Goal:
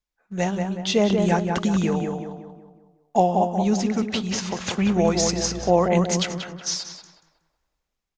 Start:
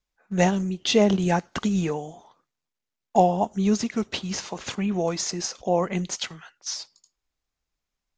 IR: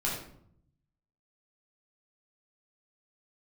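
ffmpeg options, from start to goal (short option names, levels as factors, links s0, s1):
-filter_complex "[0:a]dynaudnorm=f=270:g=7:m=3.76,asettb=1/sr,asplit=3[s0][s1][s2];[s0]atrim=end=4.814[s3];[s1]atrim=start=4.81:end=5.71,asetpts=PTS-STARTPTS,afade=t=in:d=0.004:c=qsin,afade=t=out:st=0.896:d=0.004:c=qsin,aeval=exprs='val(0)+0.0158*(sin(2*PI*60*n/s)+sin(2*PI*2*60*n/s)/2+sin(2*PI*3*60*n/s)/3+sin(2*PI*4*60*n/s)/4+sin(2*PI*5*60*n/s)/5)':c=same[s4];[s2]atrim=start=5.706[s5];[s3][s4]acrossfade=d=0.004:c1=hsin:c2=qsin[s6];[s6][s5]acrossfade=d=0.004:c1=qsin:c2=hsin,asplit=2[s7][s8];[s8]adelay=184,lowpass=f=2100:p=1,volume=0.631,asplit=2[s9][s10];[s10]adelay=184,lowpass=f=2100:p=1,volume=0.46,asplit=2[s11][s12];[s12]adelay=184,lowpass=f=2100:p=1,volume=0.46,asplit=2[s13][s14];[s14]adelay=184,lowpass=f=2100:p=1,volume=0.46,asplit=2[s15][s16];[s16]adelay=184,lowpass=f=2100:p=1,volume=0.46,asplit=2[s17][s18];[s18]adelay=184,lowpass=f=2100:p=1,volume=0.46[s19];[s7][s9][s11][s13][s15][s17][s19]amix=inputs=7:normalize=0,volume=0.596"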